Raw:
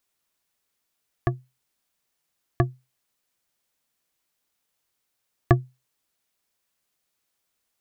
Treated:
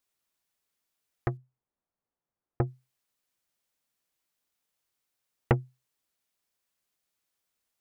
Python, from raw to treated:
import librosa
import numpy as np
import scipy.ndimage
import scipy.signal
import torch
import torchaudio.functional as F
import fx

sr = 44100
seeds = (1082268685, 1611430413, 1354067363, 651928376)

y = fx.lowpass(x, sr, hz=1000.0, slope=12, at=(1.37, 2.67))
y = fx.doppler_dist(y, sr, depth_ms=0.64)
y = y * 10.0 ** (-5.0 / 20.0)